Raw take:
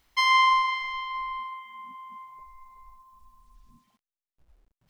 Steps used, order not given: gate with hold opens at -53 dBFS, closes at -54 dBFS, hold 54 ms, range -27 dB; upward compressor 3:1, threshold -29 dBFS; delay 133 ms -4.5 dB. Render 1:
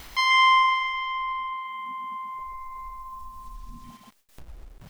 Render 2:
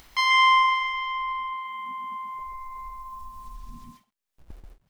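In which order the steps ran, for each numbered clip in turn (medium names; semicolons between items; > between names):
delay > upward compressor > gate with hold; gate with hold > delay > upward compressor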